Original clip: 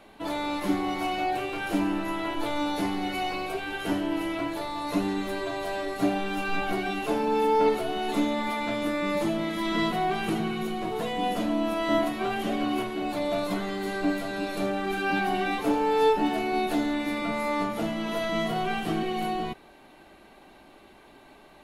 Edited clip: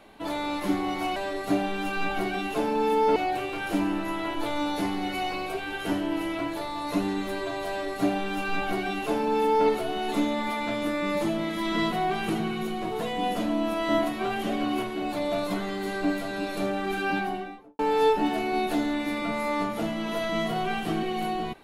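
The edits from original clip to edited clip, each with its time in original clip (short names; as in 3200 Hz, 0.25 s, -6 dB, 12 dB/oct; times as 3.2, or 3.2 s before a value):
5.68–7.68 copy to 1.16
15.01–15.79 studio fade out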